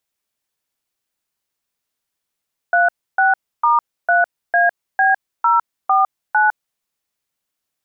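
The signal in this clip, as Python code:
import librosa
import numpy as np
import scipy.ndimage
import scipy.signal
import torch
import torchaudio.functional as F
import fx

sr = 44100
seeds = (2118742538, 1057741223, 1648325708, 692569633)

y = fx.dtmf(sr, digits='36*3AB049', tone_ms=156, gap_ms=296, level_db=-13.5)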